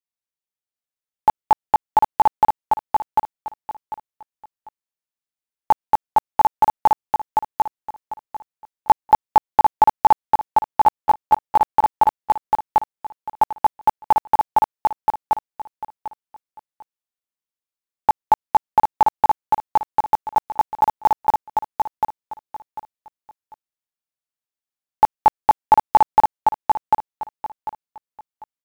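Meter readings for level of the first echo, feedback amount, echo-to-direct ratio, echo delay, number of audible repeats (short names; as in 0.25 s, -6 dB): -3.0 dB, 24%, -2.5 dB, 0.746 s, 3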